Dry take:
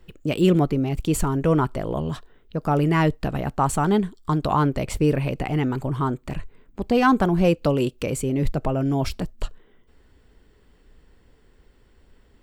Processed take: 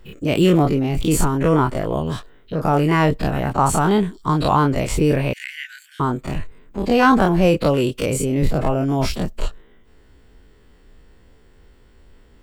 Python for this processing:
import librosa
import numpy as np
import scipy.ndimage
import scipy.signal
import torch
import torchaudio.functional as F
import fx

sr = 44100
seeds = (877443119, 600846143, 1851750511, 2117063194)

y = fx.spec_dilate(x, sr, span_ms=60)
y = fx.cheby1_highpass(y, sr, hz=1500.0, order=8, at=(5.33, 6.0))
y = y * librosa.db_to_amplitude(1.0)